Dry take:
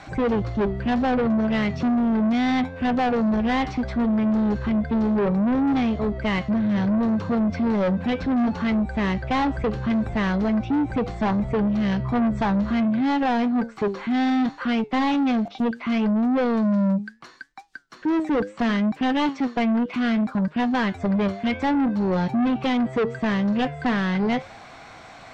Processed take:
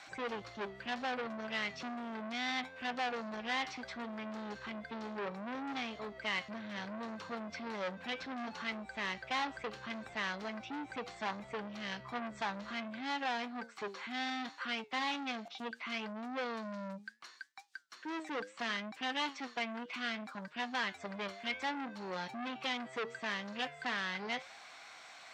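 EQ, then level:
low-pass filter 2,600 Hz 6 dB per octave
first difference
+6.0 dB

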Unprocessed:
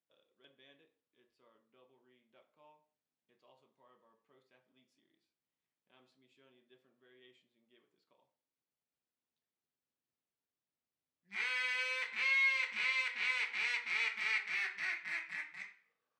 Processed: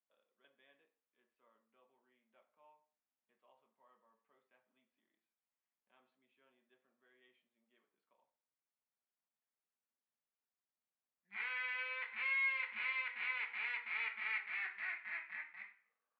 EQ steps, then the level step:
high-frequency loss of the air 340 metres
three-way crossover with the lows and the highs turned down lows −19 dB, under 550 Hz, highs −21 dB, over 3,800 Hz
parametric band 220 Hz +13 dB 0.51 octaves
0.0 dB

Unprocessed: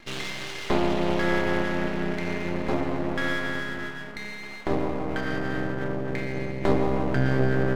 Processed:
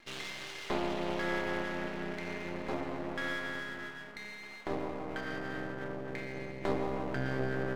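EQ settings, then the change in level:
low-shelf EQ 270 Hz −7 dB
−7.5 dB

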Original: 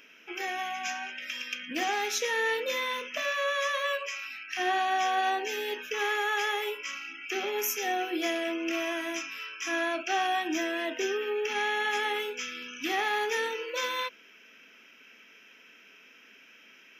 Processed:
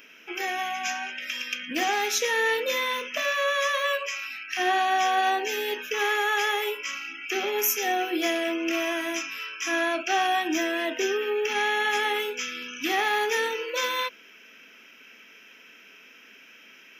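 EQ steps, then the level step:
high-shelf EQ 11,000 Hz +6 dB
+4.0 dB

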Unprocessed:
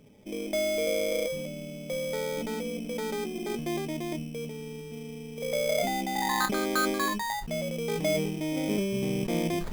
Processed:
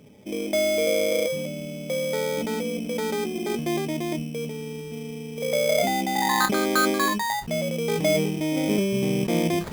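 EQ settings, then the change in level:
high-pass filter 62 Hz
+5.5 dB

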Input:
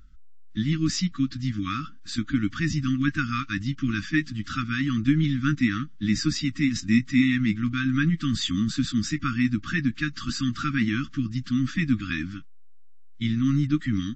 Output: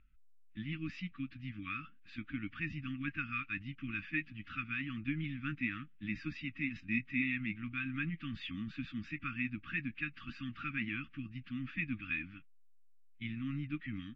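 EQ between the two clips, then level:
transistor ladder low-pass 2,700 Hz, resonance 75%
−4.5 dB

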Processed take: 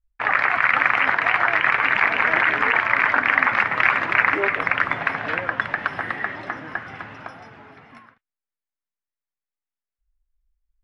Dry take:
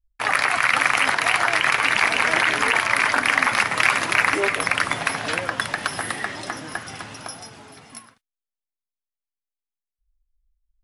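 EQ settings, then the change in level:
low-pass with resonance 1,900 Hz, resonance Q 1.5
−1.5 dB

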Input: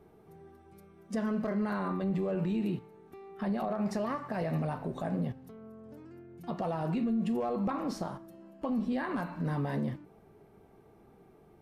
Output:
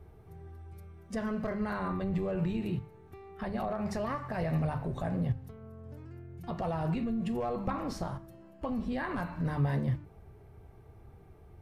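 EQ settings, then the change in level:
low shelf with overshoot 140 Hz +14 dB, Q 1.5
parametric band 2,000 Hz +2 dB
mains-hum notches 50/100/150/200 Hz
0.0 dB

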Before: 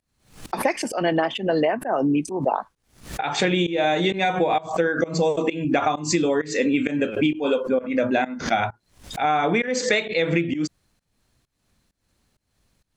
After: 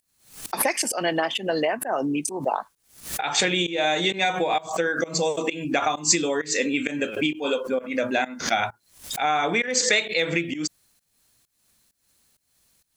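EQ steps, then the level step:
spectral tilt +2 dB per octave
high-shelf EQ 7,800 Hz +10 dB
−1.5 dB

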